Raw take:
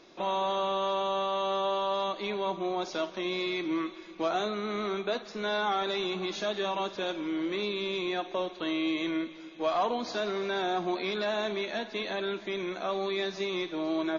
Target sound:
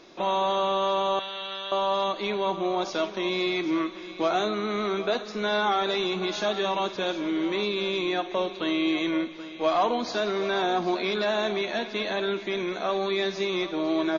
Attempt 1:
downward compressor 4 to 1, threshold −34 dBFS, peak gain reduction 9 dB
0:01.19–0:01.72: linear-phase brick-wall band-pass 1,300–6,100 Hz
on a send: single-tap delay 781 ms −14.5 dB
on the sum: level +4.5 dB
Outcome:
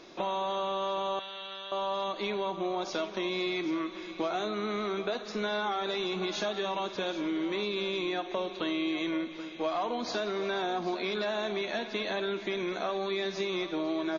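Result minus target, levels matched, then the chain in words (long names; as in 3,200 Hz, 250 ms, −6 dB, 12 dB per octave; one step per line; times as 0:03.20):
downward compressor: peak gain reduction +9 dB
0:01.19–0:01.72: linear-phase brick-wall band-pass 1,300–6,100 Hz
on a send: single-tap delay 781 ms −14.5 dB
on the sum: level +4.5 dB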